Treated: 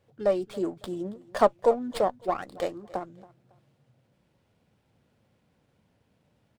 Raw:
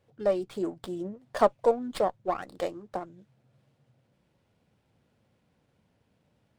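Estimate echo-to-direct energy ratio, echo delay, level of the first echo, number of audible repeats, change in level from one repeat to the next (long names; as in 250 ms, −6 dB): −20.5 dB, 277 ms, −21.0 dB, 2, −10.5 dB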